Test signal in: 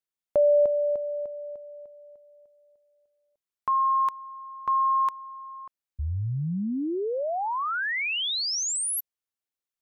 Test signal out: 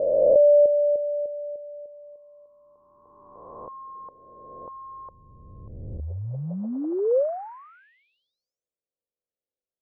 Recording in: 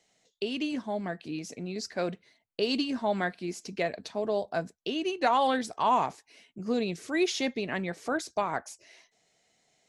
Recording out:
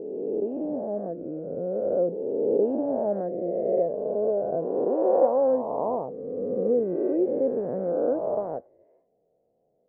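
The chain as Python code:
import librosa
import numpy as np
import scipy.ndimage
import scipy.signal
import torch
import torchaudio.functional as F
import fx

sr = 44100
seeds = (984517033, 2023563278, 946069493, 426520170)

y = fx.spec_swells(x, sr, rise_s=2.2)
y = fx.ladder_lowpass(y, sr, hz=580.0, resonance_pct=65)
y = y * librosa.db_to_amplitude(7.5)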